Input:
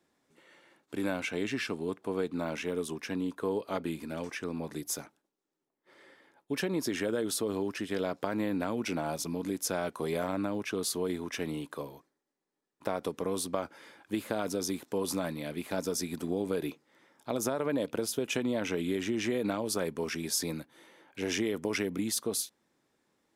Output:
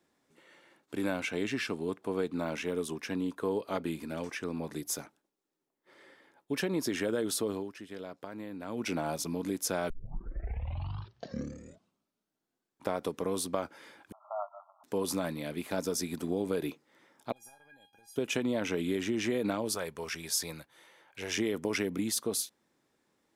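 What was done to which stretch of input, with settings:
0:07.46–0:08.87: duck −10.5 dB, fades 0.25 s
0:09.90: tape start 3.08 s
0:14.12–0:14.84: linear-phase brick-wall band-pass 590–1,400 Hz
0:17.32–0:18.16: tuned comb filter 810 Hz, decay 0.26 s, mix 100%
0:19.75–0:21.38: parametric band 260 Hz −13 dB 1.3 octaves

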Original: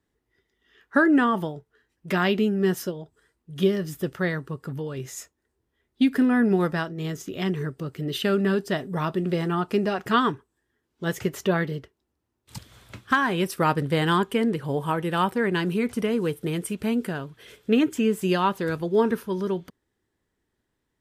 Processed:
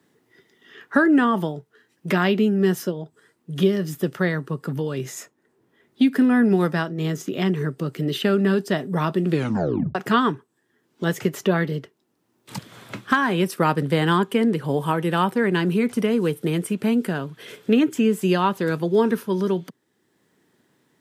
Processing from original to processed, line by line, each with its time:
0:09.28: tape stop 0.67 s
whole clip: high-pass filter 140 Hz 24 dB per octave; low-shelf EQ 230 Hz +4 dB; multiband upward and downward compressor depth 40%; level +2 dB

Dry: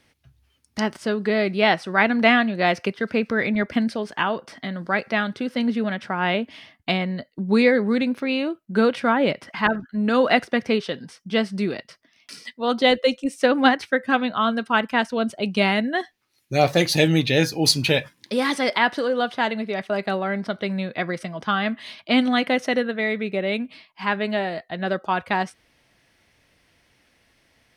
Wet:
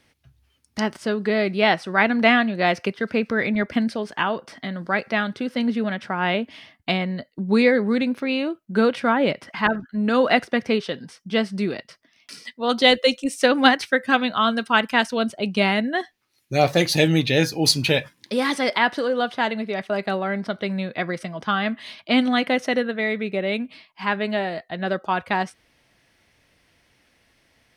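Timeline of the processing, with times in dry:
0:12.69–0:15.29: high-shelf EQ 2,500 Hz +8 dB

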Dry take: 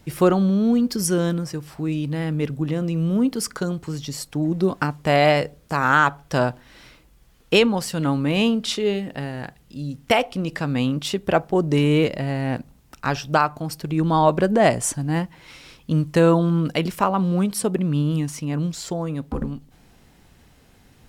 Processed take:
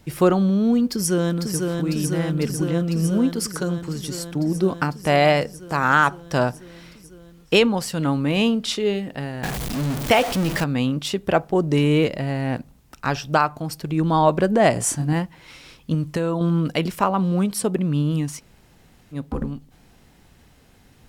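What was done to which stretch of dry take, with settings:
0:00.90–0:01.68: delay throw 500 ms, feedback 80%, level −4 dB
0:09.43–0:10.64: converter with a step at zero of −22 dBFS
0:14.73–0:15.13: double-tracking delay 27 ms −3.5 dB
0:15.94–0:16.41: downward compressor 10 to 1, threshold −18 dBFS
0:18.39–0:19.14: fill with room tone, crossfade 0.06 s

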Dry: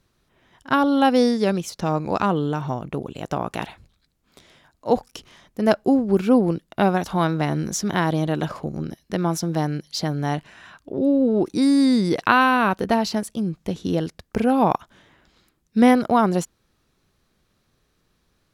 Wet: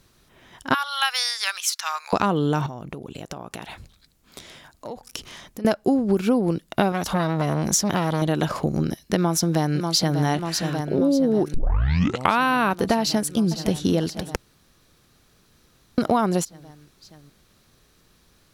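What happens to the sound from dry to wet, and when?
0:00.74–0:02.13: inverse Chebyshev high-pass filter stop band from 270 Hz, stop band 70 dB
0:02.66–0:05.65: downward compressor 10 to 1, threshold −38 dBFS
0:06.92–0:08.22: saturating transformer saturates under 1,200 Hz
0:09.16–0:10.21: delay throw 590 ms, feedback 80%, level −10.5 dB
0:11.54: tape start 0.88 s
0:13.00–0:13.79: delay throw 510 ms, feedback 45%, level −15 dB
0:14.36–0:15.98: fill with room tone
whole clip: high-shelf EQ 3,900 Hz +6 dB; downward compressor 6 to 1, threshold −24 dBFS; level +7 dB

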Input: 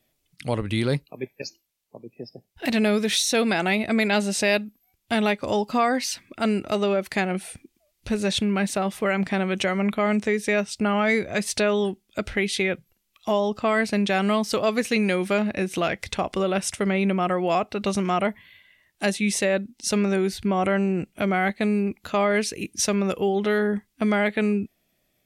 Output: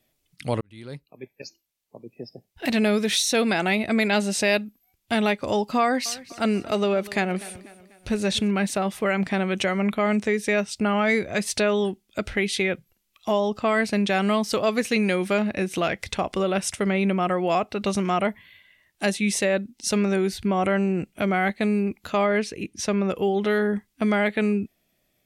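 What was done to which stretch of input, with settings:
0:00.61–0:02.13: fade in
0:05.81–0:08.51: repeating echo 246 ms, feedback 46%, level −18.5 dB
0:22.26–0:23.16: low-pass filter 2,800 Hz 6 dB per octave

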